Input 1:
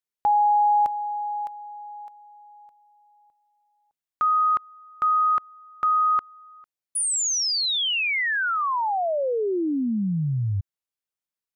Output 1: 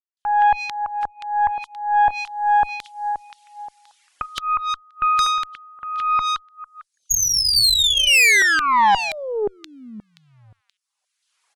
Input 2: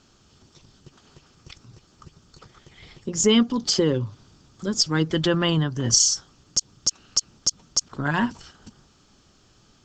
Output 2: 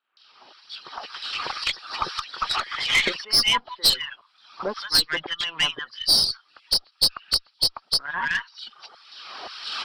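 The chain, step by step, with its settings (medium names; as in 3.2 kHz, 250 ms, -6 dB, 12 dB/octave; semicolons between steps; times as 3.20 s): knee-point frequency compression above 3 kHz 1.5:1; recorder AGC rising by 20 dB/s, up to +31 dB; reverb removal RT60 1 s; Bessel low-pass 7.7 kHz; LFO high-pass saw down 1.9 Hz 640–3900 Hz; saturation -15.5 dBFS; bands offset in time lows, highs 170 ms, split 1.4 kHz; Chebyshev shaper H 2 -11 dB, 6 -29 dB, 8 -38 dB, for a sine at -10.5 dBFS; trim +4 dB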